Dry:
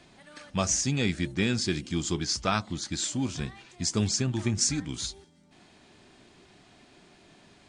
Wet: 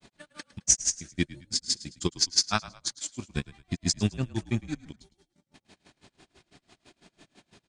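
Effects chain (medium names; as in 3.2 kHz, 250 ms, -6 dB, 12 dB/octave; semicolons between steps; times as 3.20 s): treble shelf 4.4 kHz +5.5 dB; transient shaper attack +5 dB, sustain -10 dB; granulator 103 ms, grains 6 per s, pitch spread up and down by 0 st; on a send: frequency-shifting echo 107 ms, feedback 37%, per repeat -41 Hz, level -18 dB; on the sum: trim +2.5 dB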